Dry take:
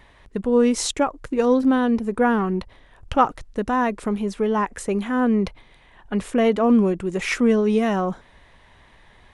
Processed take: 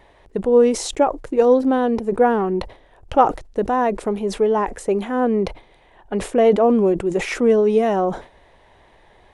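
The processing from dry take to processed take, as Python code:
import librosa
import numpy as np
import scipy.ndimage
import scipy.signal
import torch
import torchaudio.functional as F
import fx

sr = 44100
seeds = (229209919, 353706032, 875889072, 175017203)

y = fx.band_shelf(x, sr, hz=530.0, db=8.0, octaves=1.7)
y = fx.sustainer(y, sr, db_per_s=150.0)
y = y * 10.0 ** (-2.5 / 20.0)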